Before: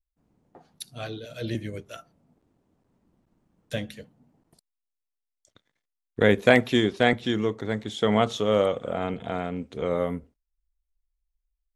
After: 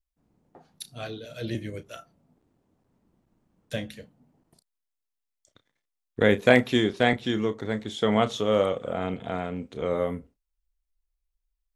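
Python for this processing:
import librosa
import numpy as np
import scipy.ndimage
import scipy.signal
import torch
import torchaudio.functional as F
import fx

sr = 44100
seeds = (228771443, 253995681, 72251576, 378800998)

y = fx.doubler(x, sr, ms=32.0, db=-12.5)
y = y * 10.0 ** (-1.0 / 20.0)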